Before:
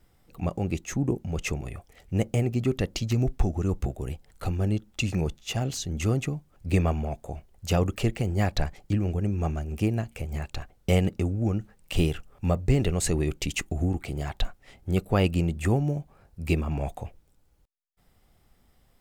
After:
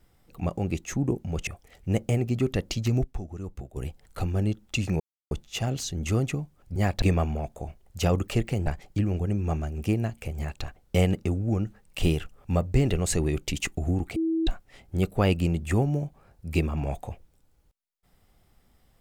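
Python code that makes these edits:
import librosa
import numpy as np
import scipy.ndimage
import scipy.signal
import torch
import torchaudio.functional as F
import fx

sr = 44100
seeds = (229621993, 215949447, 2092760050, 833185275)

y = fx.edit(x, sr, fx.cut(start_s=1.47, length_s=0.25),
    fx.clip_gain(start_s=3.29, length_s=0.72, db=-10.0),
    fx.insert_silence(at_s=5.25, length_s=0.31),
    fx.move(start_s=8.34, length_s=0.26, to_s=6.7),
    fx.bleep(start_s=14.1, length_s=0.31, hz=325.0, db=-22.5), tone=tone)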